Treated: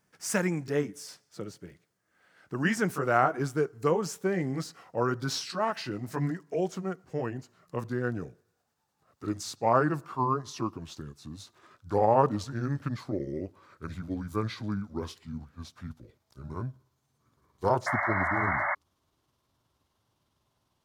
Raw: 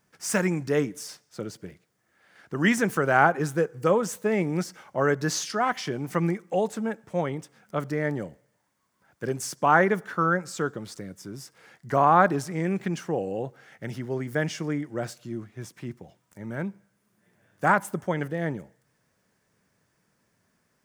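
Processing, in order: pitch bend over the whole clip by -9 st starting unshifted; painted sound noise, 17.86–18.75 s, 560–2200 Hz -26 dBFS; trim -3 dB

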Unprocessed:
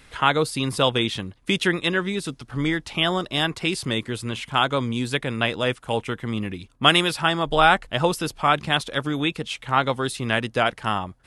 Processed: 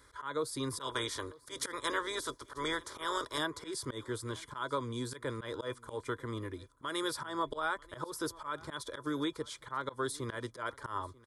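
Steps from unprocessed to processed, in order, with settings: 0.79–3.37 s: spectral peaks clipped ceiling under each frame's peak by 18 dB; high-pass 52 Hz 12 dB/octave; static phaser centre 710 Hz, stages 6; small resonant body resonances 650/1000/2400/3400 Hz, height 10 dB, ringing for 55 ms; compression 12:1, threshold -22 dBFS, peak gain reduction 9.5 dB; slow attack 119 ms; delay 940 ms -22.5 dB; trim -6 dB

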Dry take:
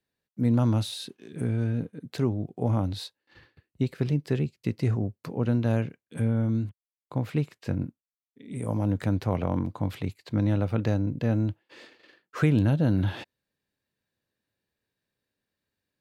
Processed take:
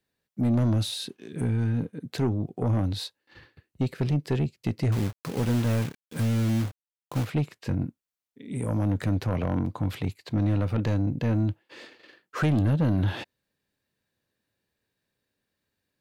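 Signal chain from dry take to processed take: 4.92–7.25 s: companded quantiser 4-bit; saturation -21.5 dBFS, distortion -11 dB; trim +3.5 dB

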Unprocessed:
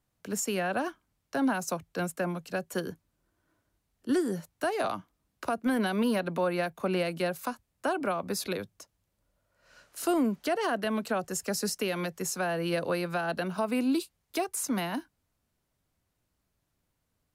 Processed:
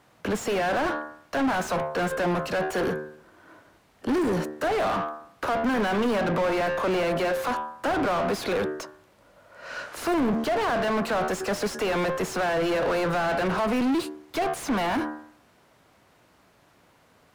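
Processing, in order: de-hum 75.59 Hz, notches 25; overdrive pedal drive 36 dB, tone 1.2 kHz, clips at -17 dBFS

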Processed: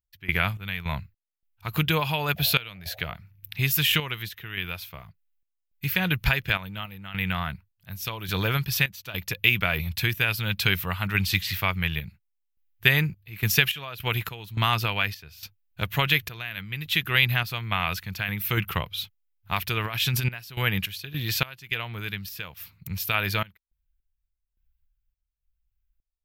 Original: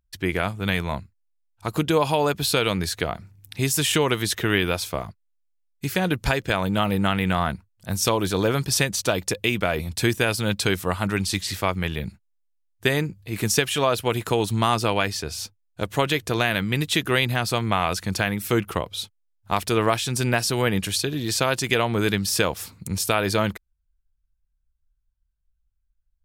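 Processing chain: FFT filter 160 Hz 0 dB, 250 Hz -12 dB, 540 Hz -11 dB, 2.6 kHz +5 dB, 9.3 kHz -14 dB, 13 kHz +8 dB; 2.36–3.13 s: band noise 500–760 Hz -49 dBFS; 19.84–20.25 s: compressor with a negative ratio -27 dBFS, ratio -0.5; random-step tremolo, depth 95%; trim +2.5 dB

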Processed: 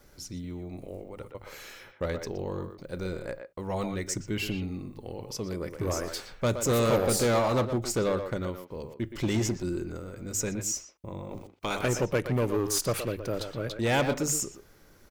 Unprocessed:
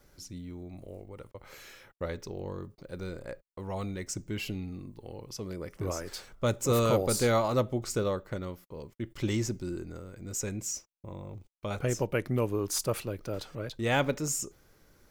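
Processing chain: 11.30–11.87 s: spectral peaks clipped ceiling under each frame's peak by 16 dB; in parallel at -4 dB: wavefolder -27.5 dBFS; on the sum: hum notches 50/100/150 Hz; speakerphone echo 120 ms, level -7 dB

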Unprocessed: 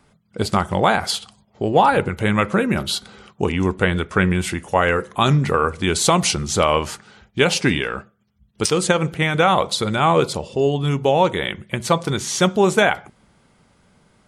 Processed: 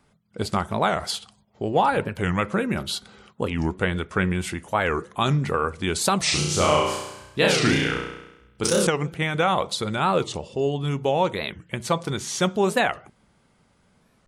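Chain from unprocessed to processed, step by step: 6.24–8.89 s: flutter echo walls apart 5.7 m, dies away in 0.93 s; warped record 45 rpm, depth 250 cents; trim -5.5 dB

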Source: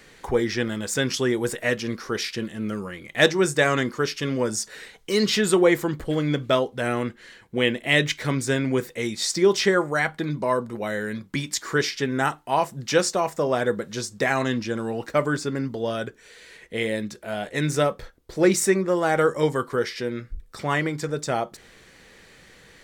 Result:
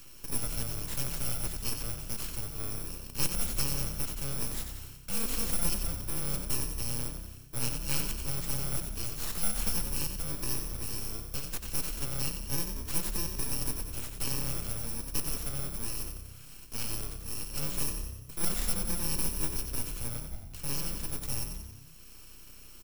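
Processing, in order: bit-reversed sample order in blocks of 64 samples; peaking EQ 1.4 kHz -8.5 dB 0.66 oct; band-stop 3.6 kHz, Q 10; full-wave rectifier; on a send: frequency-shifting echo 91 ms, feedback 46%, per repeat +32 Hz, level -7.5 dB; on the sum: three bands compressed up and down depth 40%; trim -8 dB

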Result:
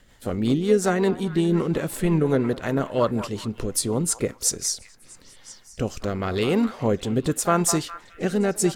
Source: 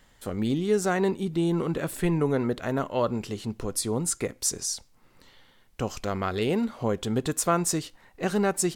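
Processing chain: repeats whose band climbs or falls 205 ms, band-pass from 920 Hz, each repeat 0.7 oct, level -10 dB; rotary cabinet horn 5.5 Hz, later 0.85 Hz, at 4.69 s; harmony voices +3 st -15 dB; trim +5.5 dB

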